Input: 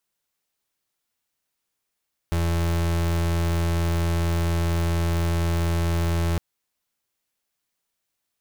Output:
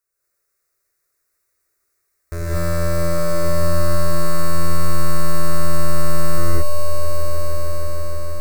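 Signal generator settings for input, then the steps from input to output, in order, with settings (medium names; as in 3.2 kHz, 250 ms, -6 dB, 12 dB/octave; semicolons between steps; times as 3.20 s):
pulse 84.3 Hz, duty 35% -22.5 dBFS 4.06 s
static phaser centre 850 Hz, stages 6; on a send: echo with a slow build-up 156 ms, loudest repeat 5, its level -10 dB; on the sum: gated-style reverb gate 260 ms rising, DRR -7.5 dB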